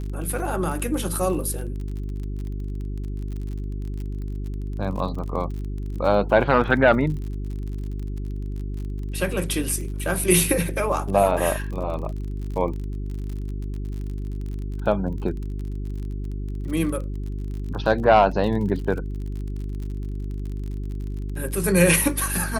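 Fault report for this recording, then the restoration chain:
surface crackle 41 per second −32 dBFS
mains hum 50 Hz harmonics 8 −29 dBFS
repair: click removal
hum removal 50 Hz, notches 8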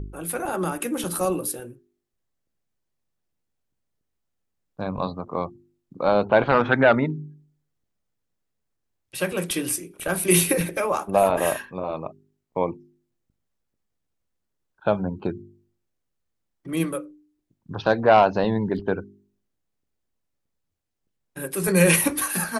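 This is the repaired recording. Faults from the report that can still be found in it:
none of them is left

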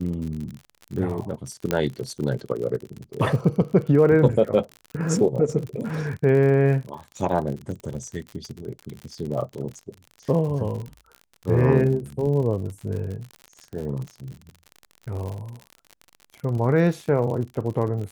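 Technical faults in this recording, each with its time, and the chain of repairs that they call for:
surface crackle 59 per second −31 dBFS
0:01.71: click −8 dBFS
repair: click removal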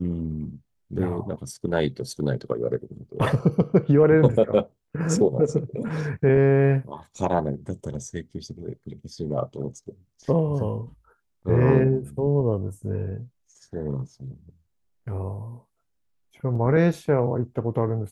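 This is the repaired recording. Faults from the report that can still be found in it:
none of them is left

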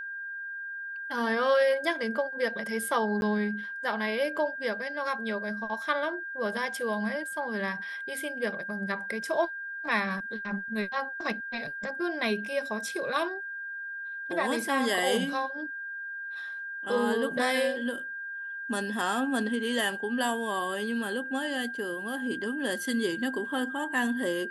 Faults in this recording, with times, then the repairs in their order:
whistle 1,600 Hz −35 dBFS
0:03.21–0:03.22: drop-out 11 ms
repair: notch filter 1,600 Hz, Q 30
repair the gap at 0:03.21, 11 ms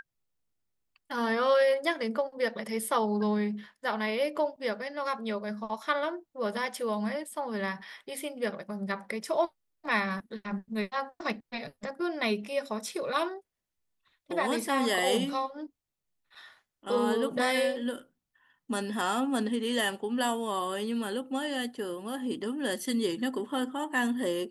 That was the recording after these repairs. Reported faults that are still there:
none of them is left

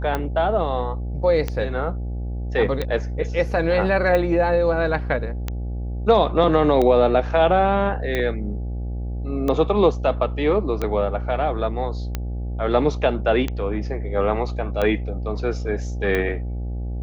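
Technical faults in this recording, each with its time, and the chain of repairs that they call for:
mains buzz 60 Hz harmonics 14 −27 dBFS
scratch tick 45 rpm −11 dBFS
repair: click removal
hum removal 60 Hz, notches 14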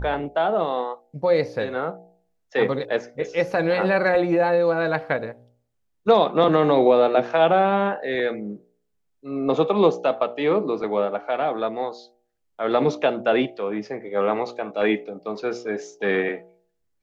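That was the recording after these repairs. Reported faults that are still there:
none of them is left

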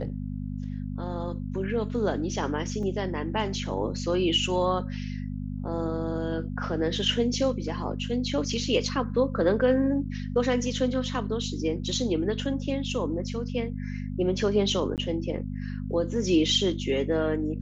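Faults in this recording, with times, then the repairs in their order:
mains hum 50 Hz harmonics 5 −33 dBFS
0:02.83: drop-out 2.9 ms
0:14.96–0:14.98: drop-out 18 ms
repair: hum removal 50 Hz, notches 5
repair the gap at 0:02.83, 2.9 ms
repair the gap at 0:14.96, 18 ms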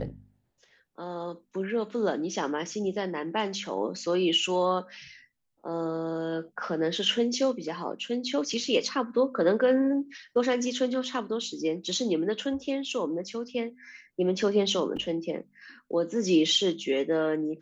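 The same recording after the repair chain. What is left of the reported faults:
none of them is left

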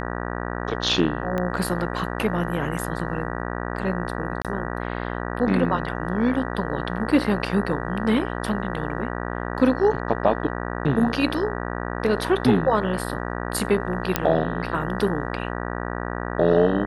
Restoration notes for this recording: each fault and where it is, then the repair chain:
mains buzz 60 Hz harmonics 32 −29 dBFS
0:01.38: click −14 dBFS
0:04.42–0:04.45: drop-out 27 ms
0:14.16: click −3 dBFS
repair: click removal
hum removal 60 Hz, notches 32
repair the gap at 0:04.42, 27 ms

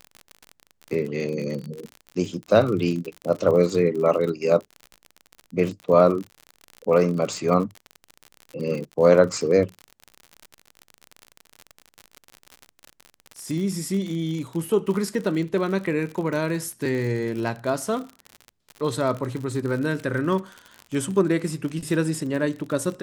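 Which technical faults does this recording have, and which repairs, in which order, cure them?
surface crackle 50 per second −29 dBFS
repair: click removal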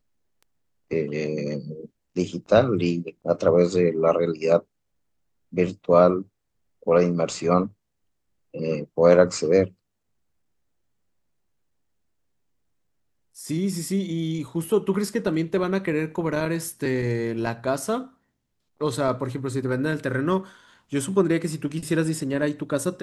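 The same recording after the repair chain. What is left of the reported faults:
none of them is left

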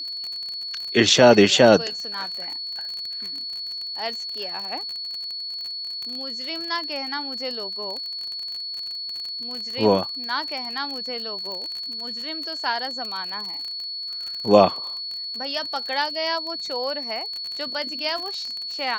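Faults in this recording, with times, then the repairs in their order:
surface crackle 40 per second −28 dBFS
whistle 4,400 Hz −29 dBFS
0:11.52: click −21 dBFS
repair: click removal
notch filter 4,400 Hz, Q 30

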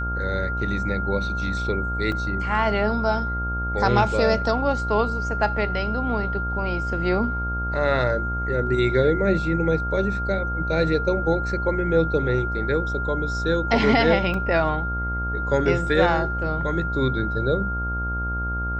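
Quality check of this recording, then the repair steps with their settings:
mains buzz 60 Hz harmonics 23 −28 dBFS
whistle 1,400 Hz −27 dBFS
0:02.12: drop-out 2.2 ms
0:14.34: drop-out 3 ms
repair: hum removal 60 Hz, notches 23
notch filter 1,400 Hz, Q 30
repair the gap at 0:02.12, 2.2 ms
repair the gap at 0:14.34, 3 ms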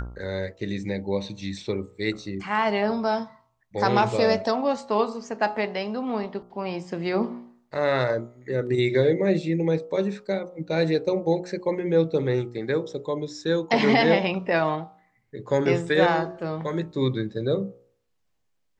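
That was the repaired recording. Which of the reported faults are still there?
none of them is left

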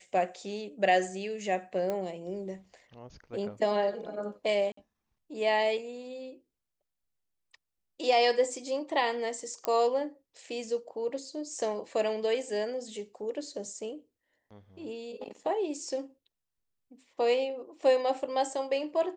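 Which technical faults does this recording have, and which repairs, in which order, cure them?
0:01.90: click −20 dBFS
0:04.72–0:04.77: drop-out 54 ms
0:09.65: click −14 dBFS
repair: click removal
repair the gap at 0:04.72, 54 ms

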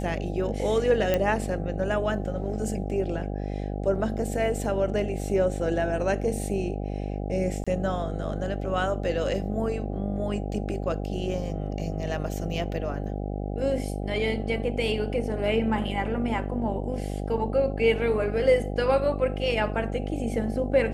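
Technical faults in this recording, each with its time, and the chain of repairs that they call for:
mains buzz 50 Hz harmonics 16 −31 dBFS
0:01.14: click −11 dBFS
0:07.64–0:07.67: drop-out 26 ms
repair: click removal
hum removal 50 Hz, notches 16
repair the gap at 0:07.64, 26 ms

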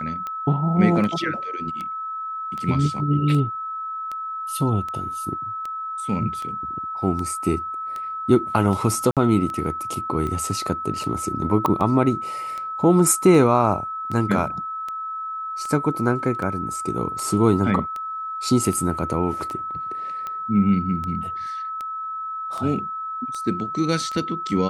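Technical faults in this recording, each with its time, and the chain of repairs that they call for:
scratch tick 78 rpm −18 dBFS
whistle 1,300 Hz −27 dBFS
0:09.11–0:09.17: drop-out 57 ms
0:11.66: click −9 dBFS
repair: click removal
notch filter 1,300 Hz, Q 30
repair the gap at 0:09.11, 57 ms

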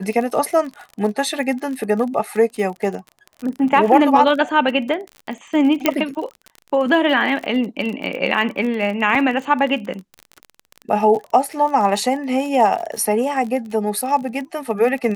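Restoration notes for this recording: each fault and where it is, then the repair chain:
surface crackle 36 per second −26 dBFS
0:05.86: click −1 dBFS
0:09.15: drop-out 2.8 ms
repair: click removal
repair the gap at 0:09.15, 2.8 ms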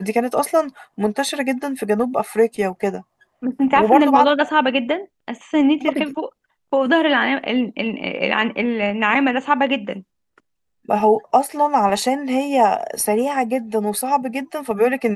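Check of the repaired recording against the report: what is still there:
0:05.86: click

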